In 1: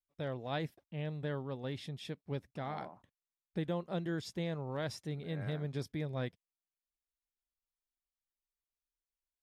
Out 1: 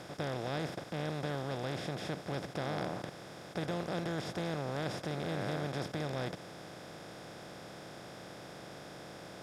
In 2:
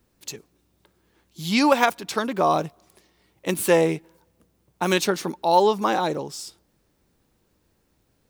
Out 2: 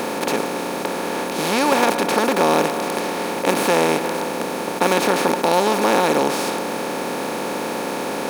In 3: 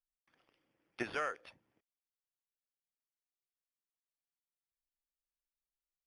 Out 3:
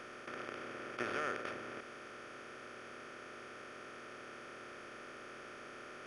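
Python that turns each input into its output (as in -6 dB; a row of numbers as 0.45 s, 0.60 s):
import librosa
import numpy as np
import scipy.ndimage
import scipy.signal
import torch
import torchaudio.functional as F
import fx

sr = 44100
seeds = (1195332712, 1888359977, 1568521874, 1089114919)

y = fx.bin_compress(x, sr, power=0.2)
y = y * librosa.db_to_amplitude(-5.5)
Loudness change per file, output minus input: +0.5 LU, +2.5 LU, -5.5 LU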